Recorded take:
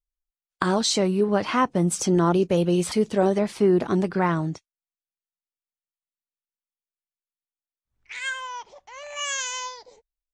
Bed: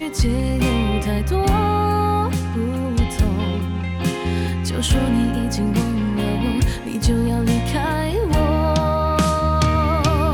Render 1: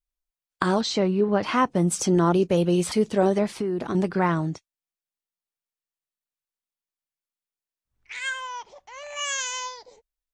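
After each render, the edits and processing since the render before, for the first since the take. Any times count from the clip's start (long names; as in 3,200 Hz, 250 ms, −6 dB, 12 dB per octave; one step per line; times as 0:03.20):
0:00.81–0:01.43: high-frequency loss of the air 130 metres
0:03.53–0:03.95: downward compressor, threshold −23 dBFS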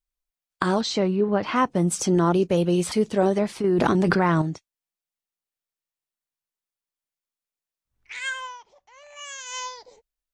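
0:01.16–0:01.56: high-frequency loss of the air 100 metres
0:03.64–0:04.42: envelope flattener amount 100%
0:08.45–0:09.58: duck −9.5 dB, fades 0.13 s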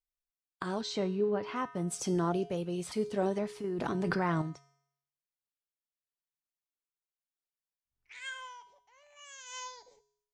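amplitude tremolo 0.93 Hz, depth 39%
tuned comb filter 140 Hz, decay 0.71 s, harmonics odd, mix 70%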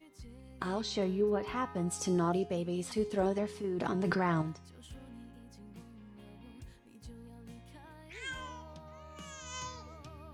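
mix in bed −32.5 dB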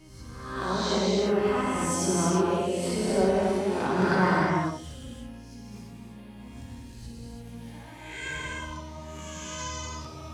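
peak hold with a rise ahead of every peak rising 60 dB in 0.84 s
reverb whose tail is shaped and stops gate 380 ms flat, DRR −5 dB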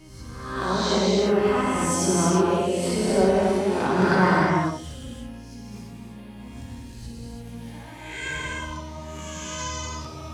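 level +4 dB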